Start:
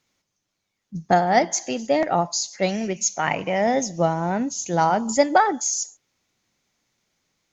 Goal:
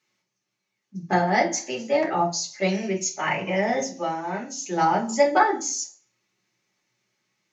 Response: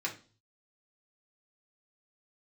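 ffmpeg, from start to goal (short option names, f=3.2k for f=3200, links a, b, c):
-filter_complex "[0:a]asettb=1/sr,asplit=3[a][b][c];[a]atrim=end=3.854[d];[b]atrim=start=3.85:end=4.61,asetpts=PTS-STARTPTS,afade=t=in:d=0.004:c=qsin,afade=t=out:st=0.756:d=0.004:c=qsin,lowshelf=f=410:g=-10[e];[c]atrim=start=4.606[f];[d][e]acrossfade=d=0.004:c1=hsin:c2=qsin[g];[g][f]acrossfade=d=0.004:c1=qsin:c2=hsin[h];[1:a]atrim=start_sample=2205,asetrate=48510,aresample=44100[i];[h][i]afir=irnorm=-1:irlink=0,volume=-3.5dB"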